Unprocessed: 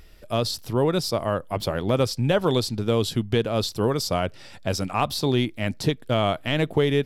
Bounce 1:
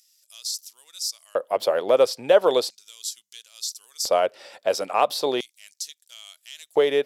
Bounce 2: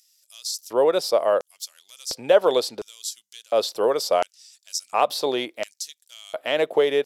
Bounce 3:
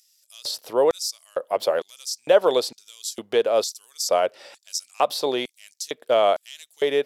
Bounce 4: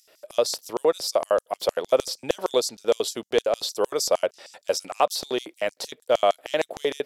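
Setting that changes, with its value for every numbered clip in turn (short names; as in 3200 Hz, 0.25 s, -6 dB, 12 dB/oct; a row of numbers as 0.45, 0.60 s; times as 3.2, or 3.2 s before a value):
LFO high-pass, rate: 0.37, 0.71, 1.1, 6.5 Hz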